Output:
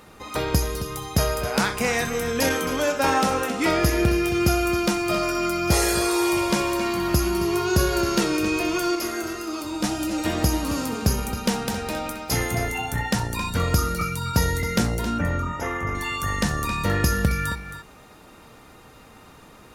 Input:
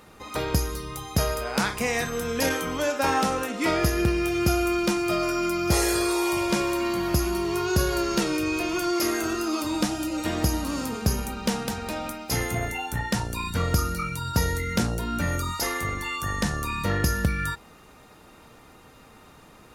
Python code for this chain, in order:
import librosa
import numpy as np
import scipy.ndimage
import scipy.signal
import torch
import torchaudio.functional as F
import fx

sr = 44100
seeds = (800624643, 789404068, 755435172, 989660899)

y = fx.comb_fb(x, sr, f0_hz=140.0, decay_s=1.7, harmonics='all', damping=0.0, mix_pct=50, at=(8.95, 9.84))
y = fx.moving_average(y, sr, points=10, at=(15.18, 15.95))
y = y + 10.0 ** (-11.5 / 20.0) * np.pad(y, (int(269 * sr / 1000.0), 0))[:len(y)]
y = y * 10.0 ** (2.5 / 20.0)